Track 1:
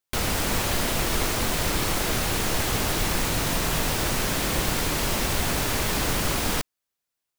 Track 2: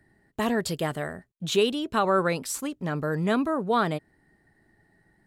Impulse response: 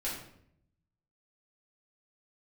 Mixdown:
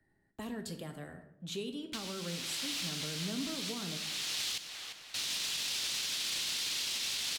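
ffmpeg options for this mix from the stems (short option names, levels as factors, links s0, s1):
-filter_complex "[0:a]bandpass=f=3600:t=q:w=1.3:csg=0,adelay=1800,volume=1.33,asplit=3[s0][s1][s2];[s0]atrim=end=4.58,asetpts=PTS-STARTPTS,afade=t=out:st=4.576:d=0.004:c=hsin[s3];[s1]atrim=start=4.58:end=5.14,asetpts=PTS-STARTPTS,volume=0[s4];[s2]atrim=start=5.14,asetpts=PTS-STARTPTS,afade=t=in:d=0.004:c=hsin[s5];[s3][s4][s5]concat=n=3:v=0:a=1,asplit=2[s6][s7];[s7]volume=0.211[s8];[1:a]acrossover=split=420[s9][s10];[s10]acompressor=threshold=0.0631:ratio=6[s11];[s9][s11]amix=inputs=2:normalize=0,volume=0.2,asplit=3[s12][s13][s14];[s13]volume=0.422[s15];[s14]apad=whole_len=405032[s16];[s6][s16]sidechaincompress=threshold=0.00631:ratio=10:attack=27:release=783[s17];[2:a]atrim=start_sample=2205[s18];[s15][s18]afir=irnorm=-1:irlink=0[s19];[s8]aecho=0:1:347|694|1041|1388|1735|2082:1|0.42|0.176|0.0741|0.0311|0.0131[s20];[s17][s12][s19][s20]amix=inputs=4:normalize=0,acrossover=split=330|3000[s21][s22][s23];[s22]acompressor=threshold=0.00501:ratio=6[s24];[s21][s24][s23]amix=inputs=3:normalize=0,alimiter=level_in=1.33:limit=0.0631:level=0:latency=1:release=13,volume=0.75"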